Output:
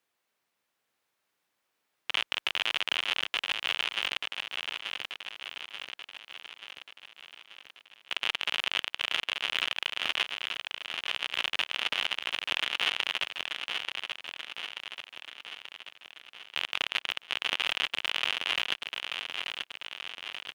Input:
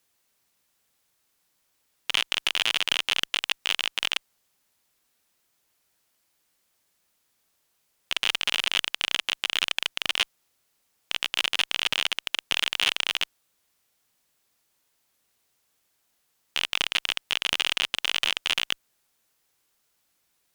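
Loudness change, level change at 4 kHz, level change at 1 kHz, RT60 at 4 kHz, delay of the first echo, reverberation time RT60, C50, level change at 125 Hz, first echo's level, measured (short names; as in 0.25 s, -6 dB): -5.5 dB, -4.0 dB, -1.0 dB, none, 0.884 s, none, none, n/a, -5.5 dB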